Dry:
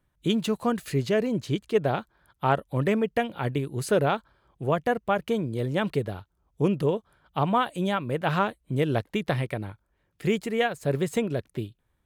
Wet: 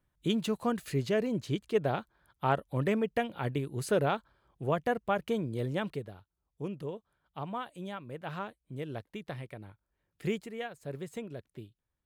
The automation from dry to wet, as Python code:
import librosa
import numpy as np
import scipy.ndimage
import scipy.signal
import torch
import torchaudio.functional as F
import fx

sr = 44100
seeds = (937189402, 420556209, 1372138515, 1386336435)

y = fx.gain(x, sr, db=fx.line((5.7, -5.0), (6.13, -14.0), (9.56, -14.0), (10.27, -6.5), (10.53, -14.0)))